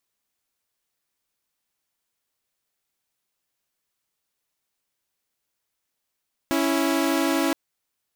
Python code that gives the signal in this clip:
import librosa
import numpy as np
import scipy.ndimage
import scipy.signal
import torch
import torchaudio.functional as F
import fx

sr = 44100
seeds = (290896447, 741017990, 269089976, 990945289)

y = fx.chord(sr, length_s=1.02, notes=(61, 64), wave='saw', level_db=-20.5)